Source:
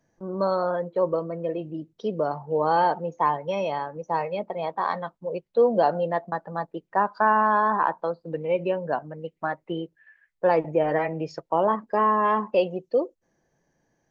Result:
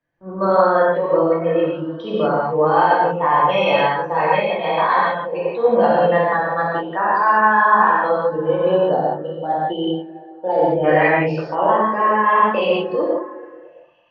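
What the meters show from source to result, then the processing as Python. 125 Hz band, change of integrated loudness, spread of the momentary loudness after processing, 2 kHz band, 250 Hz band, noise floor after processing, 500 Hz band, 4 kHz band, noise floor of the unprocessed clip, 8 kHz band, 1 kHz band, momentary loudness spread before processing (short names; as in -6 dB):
+8.0 dB, +8.0 dB, 9 LU, +12.0 dB, +7.5 dB, -41 dBFS, +7.5 dB, +13.0 dB, -75 dBFS, n/a, +8.5 dB, 11 LU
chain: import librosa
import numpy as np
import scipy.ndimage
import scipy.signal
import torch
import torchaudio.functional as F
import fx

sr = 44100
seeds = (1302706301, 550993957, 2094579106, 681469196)

p1 = fx.spec_box(x, sr, start_s=8.25, length_s=2.59, low_hz=930.0, high_hz=2900.0, gain_db=-18)
p2 = scipy.signal.sosfilt(scipy.signal.butter(4, 3900.0, 'lowpass', fs=sr, output='sos'), p1)
p3 = fx.peak_eq(p2, sr, hz=2200.0, db=9.0, octaves=2.5)
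p4 = fx.over_compress(p3, sr, threshold_db=-22.0, ratio=-0.5)
p5 = p3 + (p4 * 10.0 ** (0.0 / 20.0))
p6 = fx.echo_stepped(p5, sr, ms=221, hz=240.0, octaves=0.7, feedback_pct=70, wet_db=-11.0)
p7 = fx.rev_gated(p6, sr, seeds[0], gate_ms=210, shape='flat', drr_db=-6.5)
p8 = fx.band_widen(p7, sr, depth_pct=40)
y = p8 * 10.0 ** (-6.5 / 20.0)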